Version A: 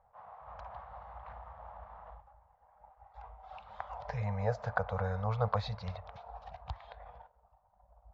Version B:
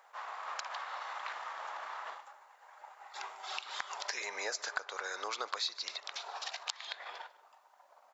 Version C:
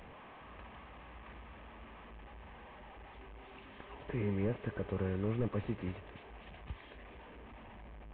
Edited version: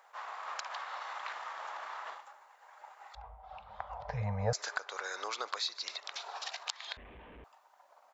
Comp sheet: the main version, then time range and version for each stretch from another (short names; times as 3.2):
B
3.15–4.53 from A
6.97–7.44 from C